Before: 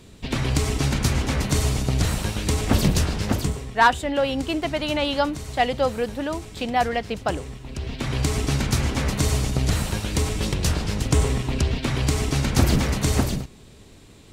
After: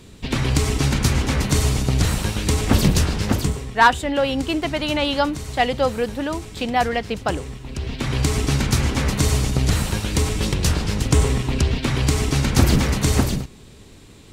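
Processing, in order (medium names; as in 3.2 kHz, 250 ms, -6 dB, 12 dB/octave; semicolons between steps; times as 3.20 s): peaking EQ 650 Hz -3 dB 0.41 oct; trim +3 dB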